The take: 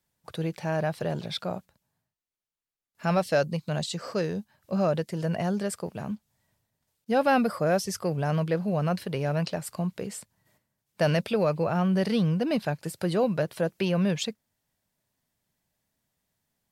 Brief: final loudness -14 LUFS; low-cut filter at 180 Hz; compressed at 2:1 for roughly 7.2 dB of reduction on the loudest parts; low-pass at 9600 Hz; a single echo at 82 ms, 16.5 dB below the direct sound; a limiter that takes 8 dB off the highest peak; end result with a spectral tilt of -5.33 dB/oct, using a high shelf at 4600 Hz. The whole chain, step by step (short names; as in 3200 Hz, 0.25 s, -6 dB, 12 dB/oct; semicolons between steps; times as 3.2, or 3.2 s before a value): HPF 180 Hz; LPF 9600 Hz; high shelf 4600 Hz -3.5 dB; compressor 2:1, threshold -32 dBFS; limiter -24.5 dBFS; echo 82 ms -16.5 dB; gain +22 dB